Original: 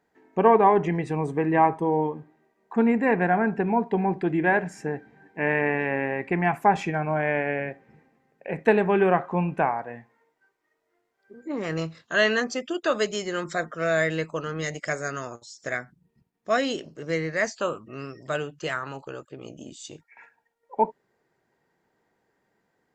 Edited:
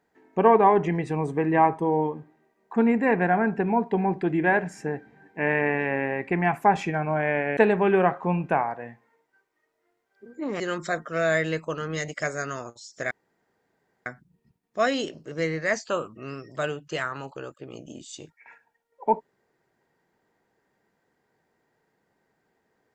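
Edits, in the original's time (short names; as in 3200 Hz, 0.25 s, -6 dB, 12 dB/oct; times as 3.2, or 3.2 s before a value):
7.57–8.65 cut
11.68–13.26 cut
15.77 insert room tone 0.95 s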